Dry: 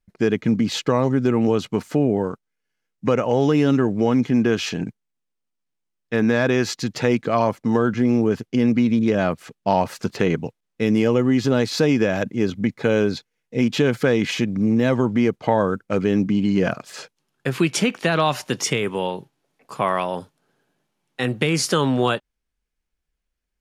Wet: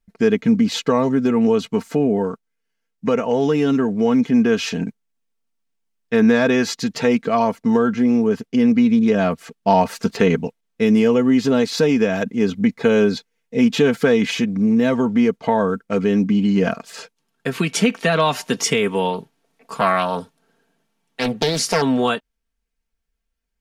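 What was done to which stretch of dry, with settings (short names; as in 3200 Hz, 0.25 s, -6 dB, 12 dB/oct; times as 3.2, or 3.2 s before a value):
19.13–21.82 Doppler distortion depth 0.64 ms
whole clip: vocal rider 2 s; comb 4.4 ms, depth 60%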